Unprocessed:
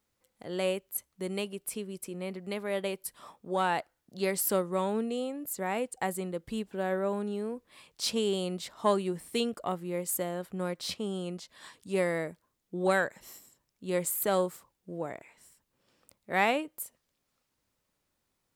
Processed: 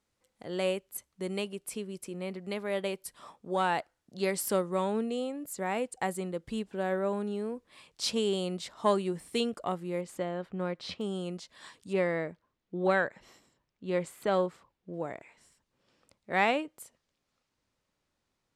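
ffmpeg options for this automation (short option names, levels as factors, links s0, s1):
-af "asetnsamples=n=441:p=0,asendcmd='10.01 lowpass f 3600;11.01 lowpass f 9200;11.93 lowpass f 3700;14.94 lowpass f 6800',lowpass=9500"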